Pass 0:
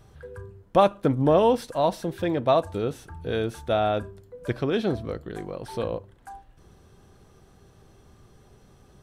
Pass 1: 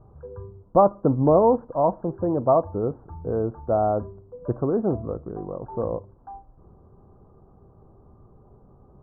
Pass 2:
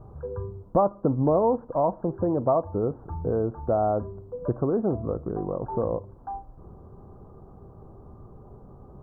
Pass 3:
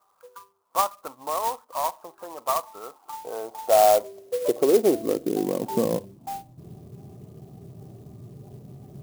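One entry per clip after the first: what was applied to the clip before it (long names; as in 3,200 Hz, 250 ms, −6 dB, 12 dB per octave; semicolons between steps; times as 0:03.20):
Butterworth low-pass 1,200 Hz 48 dB per octave; level +2 dB
downward compressor 2 to 1, threshold −32 dBFS, peak gain reduction 11 dB; level +5.5 dB
high-pass filter sweep 1,200 Hz → 130 Hz, 0:02.83–0:06.58; noise reduction from a noise print of the clip's start 10 dB; converter with an unsteady clock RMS 0.054 ms; level +1 dB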